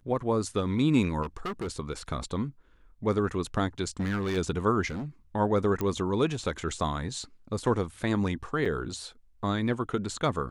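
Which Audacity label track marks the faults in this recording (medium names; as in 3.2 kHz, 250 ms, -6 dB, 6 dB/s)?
1.220000	1.680000	clipped -29.5 dBFS
4.000000	4.380000	clipped -25.5 dBFS
4.870000	5.060000	clipped -31.5 dBFS
5.810000	5.810000	pop -16 dBFS
8.650000	8.660000	dropout 5.5 ms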